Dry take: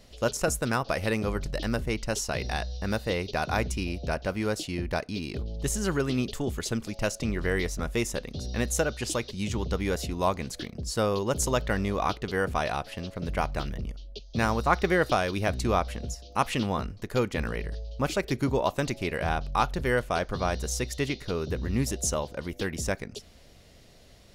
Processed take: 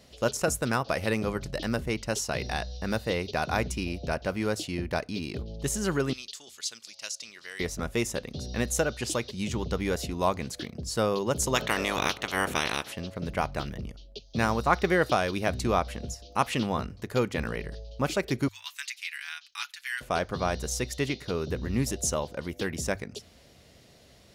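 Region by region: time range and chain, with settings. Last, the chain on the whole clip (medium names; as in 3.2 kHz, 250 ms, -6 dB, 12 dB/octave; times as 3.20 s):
6.13–7.60 s: band-pass filter 4.7 kHz, Q 1.3 + treble shelf 5.1 kHz +7 dB
11.54–12.91 s: spectral peaks clipped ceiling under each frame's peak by 23 dB + peaking EQ 4.8 kHz -7.5 dB 0.23 oct + upward compressor, threshold -32 dBFS
18.48–20.01 s: inverse Chebyshev high-pass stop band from 530 Hz, stop band 60 dB + comb 7 ms, depth 51%
whole clip: high-pass 63 Hz; hum notches 50/100 Hz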